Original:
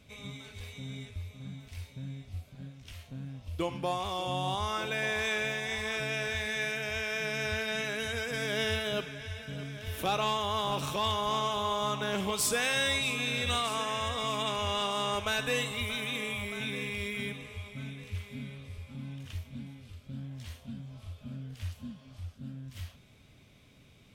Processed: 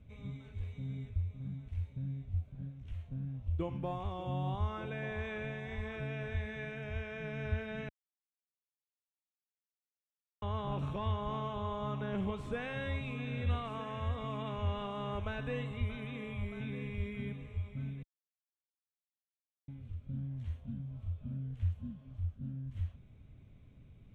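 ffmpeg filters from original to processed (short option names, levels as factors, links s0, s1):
-filter_complex "[0:a]asplit=5[s0][s1][s2][s3][s4];[s0]atrim=end=7.89,asetpts=PTS-STARTPTS,afade=t=out:st=7.886:d=0.004:c=hsin[s5];[s1]atrim=start=7.89:end=10.42,asetpts=PTS-STARTPTS,volume=0[s6];[s2]atrim=start=10.42:end=18.03,asetpts=PTS-STARTPTS,afade=t=in:d=0.004:c=hsin,afade=t=out:st=7.606:d=0.004:c=hsin[s7];[s3]atrim=start=18.03:end=19.68,asetpts=PTS-STARTPTS,volume=0[s8];[s4]atrim=start=19.68,asetpts=PTS-STARTPTS,afade=t=in:d=0.004:c=hsin[s9];[s5][s6][s7][s8][s9]concat=n=5:v=0:a=1,aemphasis=mode=reproduction:type=riaa,acrossover=split=4000[s10][s11];[s11]acompressor=threshold=0.00141:ratio=4:attack=1:release=60[s12];[s10][s12]amix=inputs=2:normalize=0,equalizer=f=4900:w=3:g=-11.5,volume=0.355"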